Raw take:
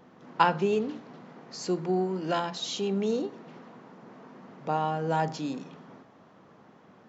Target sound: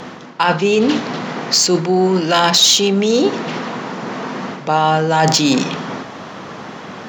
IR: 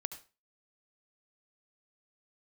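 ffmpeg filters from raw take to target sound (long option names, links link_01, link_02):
-af "areverse,acompressor=threshold=-34dB:ratio=20,areverse,crystalizer=i=7:c=0,adynamicsmooth=sensitivity=3:basefreq=5300,alimiter=level_in=23.5dB:limit=-1dB:release=50:level=0:latency=1,volume=-1dB"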